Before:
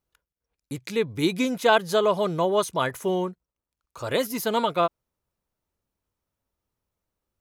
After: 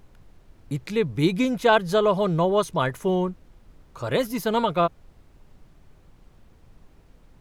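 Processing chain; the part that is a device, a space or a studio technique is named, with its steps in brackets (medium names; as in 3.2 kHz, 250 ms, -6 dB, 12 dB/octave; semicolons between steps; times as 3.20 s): car interior (peaking EQ 150 Hz +7 dB; treble shelf 4.6 kHz -7 dB; brown noise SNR 24 dB); trim +1 dB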